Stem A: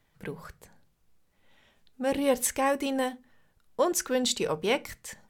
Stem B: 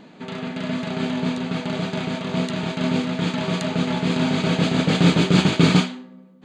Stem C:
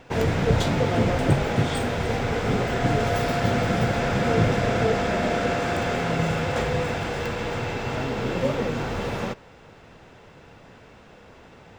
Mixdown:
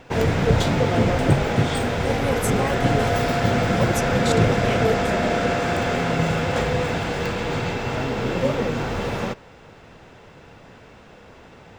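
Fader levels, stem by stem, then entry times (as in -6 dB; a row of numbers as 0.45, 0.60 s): -2.5, -16.5, +2.5 dB; 0.00, 1.90, 0.00 s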